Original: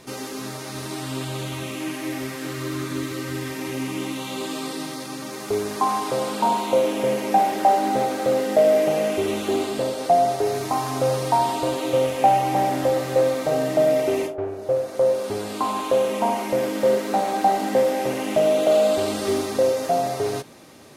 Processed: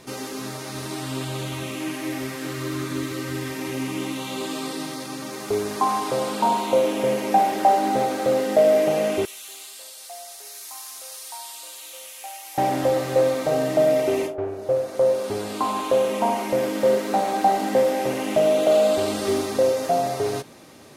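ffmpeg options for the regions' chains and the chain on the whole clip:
-filter_complex "[0:a]asettb=1/sr,asplit=3[s0][s1][s2];[s0]atrim=end=9.254[s3];[s1]atrim=start=9.25:end=12.58,asetpts=PTS-STARTPTS,afade=t=in:d=0.004:c=qsin,afade=t=out:st=3.326:d=0.004:c=qsin,highpass=f=880:p=1,aderivative[s4];[s2]atrim=start=12.576[s5];[s3][s4]acrossfade=d=0.004:c1=hsin:c2=qsin[s6];[s6][s5]acrossfade=d=0.004:c1=qsin:c2=hsin"

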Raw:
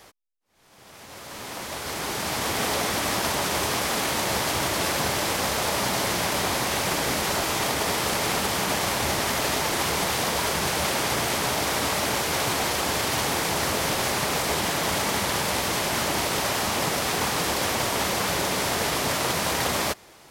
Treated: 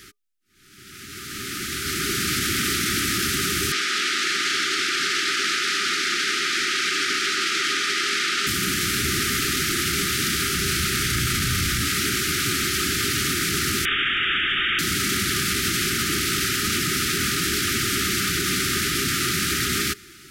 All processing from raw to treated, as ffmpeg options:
-filter_complex "[0:a]asettb=1/sr,asplit=3[s0][s1][s2];[s0]atrim=end=3.724[s3];[s1]atrim=start=3.72:end=8.47,asetpts=PTS-STARTPTS,afade=t=in:d=0.004:c=qsin,afade=t=out:st=4.746:d=0.004:c=qsin,highpass=510,lowpass=5500,aecho=1:1:232:0.631,atrim=end_sample=209475[s4];[s2]atrim=start=8.466[s5];[s3][s4]acrossfade=d=0.004:c1=hsin:c2=qsin[s6];[s6][s5]acrossfade=d=0.004:c1=qsin:c2=hsin,asettb=1/sr,asplit=3[s7][s8][s9];[s7]atrim=end=10.424[s10];[s8]atrim=start=10.42:end=11.85,asetpts=PTS-STARTPTS,afade=t=in:d=0.004:c=qsin,afade=t=out:st=1.426:d=0.004:c=qsin,asubboost=boost=11:cutoff=140,asplit=2[s11][s12];[s12]adelay=33,volume=0.501[s13];[s11][s13]amix=inputs=2:normalize=0,atrim=end_sample=63063[s14];[s9]atrim=start=11.846[s15];[s10][s14]acrossfade=d=0.004:c1=hsin:c2=qsin[s16];[s16][s15]acrossfade=d=0.004:c1=qsin:c2=hsin,asettb=1/sr,asplit=3[s17][s18][s19];[s17]atrim=end=13.854[s20];[s18]atrim=start=13.85:end=14.79,asetpts=PTS-STARTPTS,afade=t=in:d=0.004:c=qsin,afade=t=out:st=0.936:d=0.004:c=qsin,highpass=230,tiltshelf=f=840:g=-7.5,lowpass=f=3300:t=q:w=0.5098,lowpass=f=3300:t=q:w=0.6013,lowpass=f=3300:t=q:w=0.9,lowpass=f=3300:t=q:w=2.563,afreqshift=-3900[s21];[s19]atrim=start=14.786[s22];[s20][s21]acrossfade=d=0.004:c1=hsin:c2=qsin[s23];[s23][s22]acrossfade=d=0.004:c1=qsin:c2=hsin,afftfilt=real='re*(1-between(b*sr/4096,410,1200))':imag='im*(1-between(b*sr/4096,410,1200))':win_size=4096:overlap=0.75,acontrast=64,alimiter=limit=0.188:level=0:latency=1:release=13"

